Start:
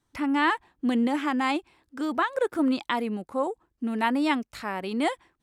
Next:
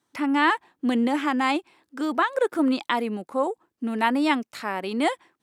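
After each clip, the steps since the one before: HPF 200 Hz 12 dB/oct; gain +3 dB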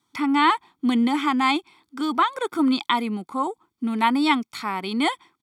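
bell 3800 Hz +5.5 dB 0.61 oct; comb 0.9 ms, depth 72%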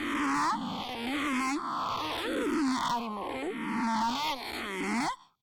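spectral swells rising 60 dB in 1.75 s; tube stage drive 22 dB, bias 0.3; endless phaser -0.87 Hz; gain -3 dB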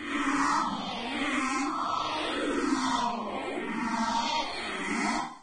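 thin delay 0.114 s, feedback 54%, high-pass 4000 Hz, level -18 dB; digital reverb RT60 0.52 s, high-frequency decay 0.7×, pre-delay 45 ms, DRR -5.5 dB; gain -4.5 dB; Vorbis 16 kbps 22050 Hz

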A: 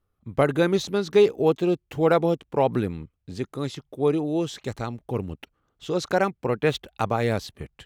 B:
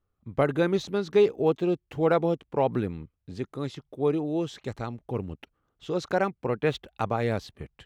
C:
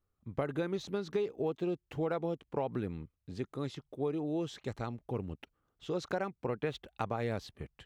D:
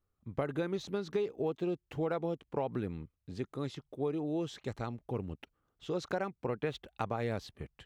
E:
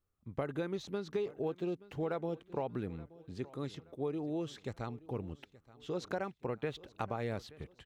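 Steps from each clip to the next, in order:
high shelf 5500 Hz -9 dB; gain -3 dB
compressor 6:1, threshold -26 dBFS, peak gain reduction 10 dB; gain -4 dB
nothing audible
feedback echo 0.876 s, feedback 41%, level -20 dB; gain -2.5 dB

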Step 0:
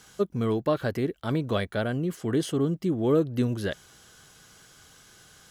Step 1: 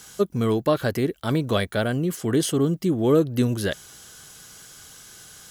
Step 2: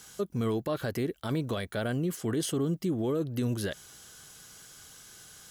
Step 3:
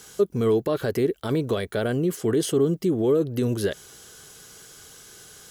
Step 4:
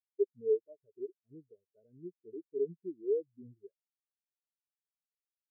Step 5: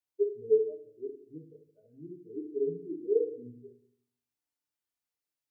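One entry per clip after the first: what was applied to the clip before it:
high shelf 5500 Hz +10 dB; gain +4 dB
limiter -16.5 dBFS, peak gain reduction 8 dB; gain -5.5 dB
bell 420 Hz +8.5 dB 0.55 oct; gain +4 dB
spectral expander 4:1; gain -9 dB
FDN reverb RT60 0.58 s, low-frequency decay 1.45×, high-frequency decay 0.95×, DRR -1 dB

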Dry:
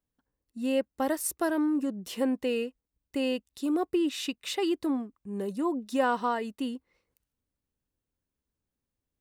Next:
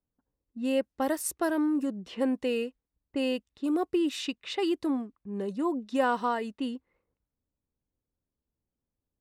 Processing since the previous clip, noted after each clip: low-pass opened by the level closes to 1000 Hz, open at -26 dBFS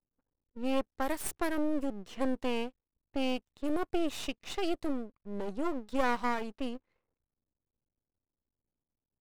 half-wave rectifier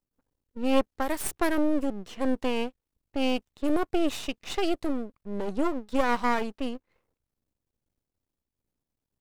noise-modulated level, depth 60%; gain +8.5 dB

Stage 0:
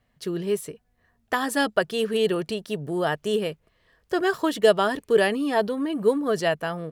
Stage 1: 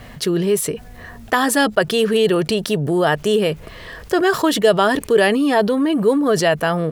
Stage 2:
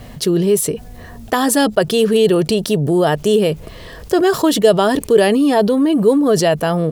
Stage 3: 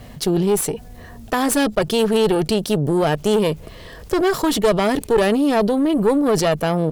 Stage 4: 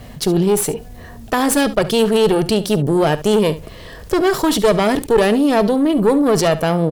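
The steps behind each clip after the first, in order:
fast leveller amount 50%; gain +3 dB
bell 1700 Hz -8 dB 1.7 oct; gain +4 dB
tube stage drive 10 dB, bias 0.65
tapped delay 48/70 ms -20/-16 dB; gain +2.5 dB

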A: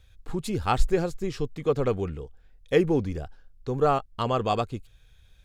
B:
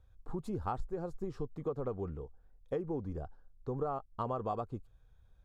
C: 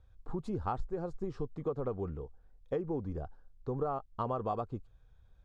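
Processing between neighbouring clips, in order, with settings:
compressor 12:1, threshold -26 dBFS, peak gain reduction 13.5 dB; resonant high shelf 1600 Hz -12.5 dB, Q 1.5; gain -6.5 dB
LPF 6400 Hz 12 dB/oct; gain +1.5 dB

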